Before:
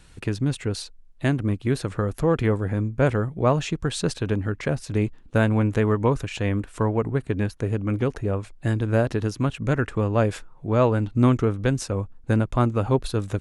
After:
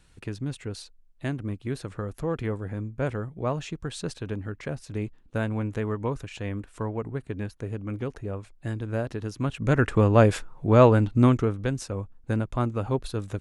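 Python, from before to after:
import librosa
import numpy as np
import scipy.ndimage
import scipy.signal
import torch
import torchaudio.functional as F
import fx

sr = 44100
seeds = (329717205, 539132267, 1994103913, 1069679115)

y = fx.gain(x, sr, db=fx.line((9.23, -8.0), (9.89, 3.5), (10.88, 3.5), (11.7, -5.5)))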